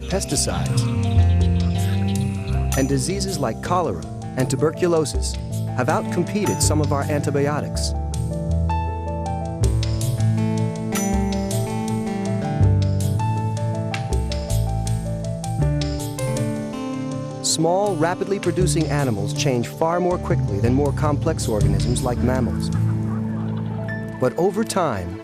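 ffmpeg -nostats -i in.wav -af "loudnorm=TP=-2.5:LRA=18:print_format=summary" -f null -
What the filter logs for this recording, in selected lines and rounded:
Input Integrated:    -21.9 LUFS
Input True Peak:      -6.0 dBTP
Input LRA:             2.4 LU
Input Threshold:     -31.9 LUFS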